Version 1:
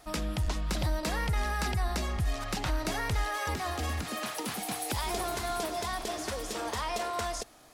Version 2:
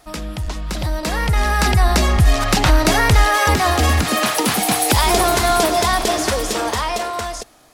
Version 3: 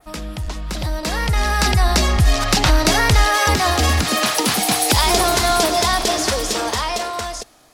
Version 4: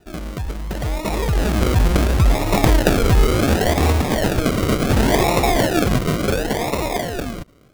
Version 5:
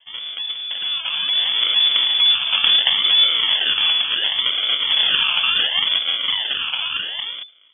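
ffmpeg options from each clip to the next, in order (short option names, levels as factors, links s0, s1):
-af "dynaudnorm=f=220:g=13:m=4.22,volume=1.78"
-af "adynamicequalizer=threshold=0.0224:dfrequency=5000:dqfactor=0.93:tfrequency=5000:tqfactor=0.93:attack=5:release=100:ratio=0.375:range=2.5:mode=boostabove:tftype=bell,volume=0.841"
-af "acrusher=samples=40:mix=1:aa=0.000001:lfo=1:lforange=24:lforate=0.7"
-af "lowpass=f=3000:t=q:w=0.5098,lowpass=f=3000:t=q:w=0.6013,lowpass=f=3000:t=q:w=0.9,lowpass=f=3000:t=q:w=2.563,afreqshift=-3500,volume=0.794"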